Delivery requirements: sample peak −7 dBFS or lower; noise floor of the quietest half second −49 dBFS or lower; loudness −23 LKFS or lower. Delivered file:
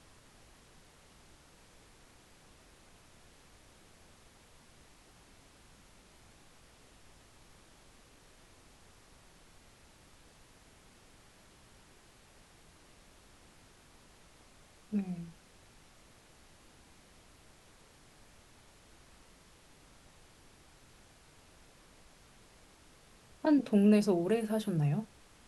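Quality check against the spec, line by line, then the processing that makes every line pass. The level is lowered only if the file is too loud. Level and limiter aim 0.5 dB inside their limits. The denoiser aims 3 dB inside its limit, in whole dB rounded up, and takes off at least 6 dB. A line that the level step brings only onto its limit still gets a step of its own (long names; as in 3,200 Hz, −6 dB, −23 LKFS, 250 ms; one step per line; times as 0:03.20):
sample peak −15.5 dBFS: in spec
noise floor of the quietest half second −60 dBFS: in spec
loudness −30.5 LKFS: in spec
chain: no processing needed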